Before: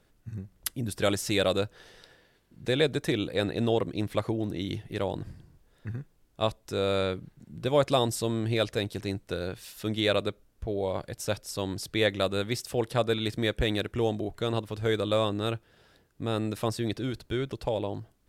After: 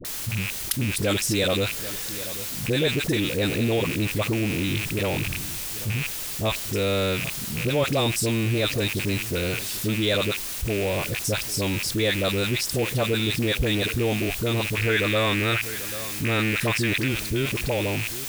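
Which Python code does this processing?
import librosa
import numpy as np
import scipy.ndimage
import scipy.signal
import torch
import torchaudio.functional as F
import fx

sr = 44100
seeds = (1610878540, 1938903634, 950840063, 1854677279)

y = fx.rattle_buzz(x, sr, strikes_db=-40.0, level_db=-25.0)
y = fx.peak_eq(y, sr, hz=1800.0, db=11.5, octaves=1.1, at=(14.72, 17.04))
y = y + 10.0 ** (-23.0 / 20.0) * np.pad(y, (int(790 * sr / 1000.0), 0))[:len(y)]
y = fx.dmg_noise_colour(y, sr, seeds[0], colour='white', level_db=-47.0)
y = fx.peak_eq(y, sr, hz=870.0, db=-5.5, octaves=2.5)
y = fx.dispersion(y, sr, late='highs', ms=49.0, hz=690.0)
y = fx.env_flatten(y, sr, amount_pct=50)
y = y * librosa.db_to_amplitude(3.0)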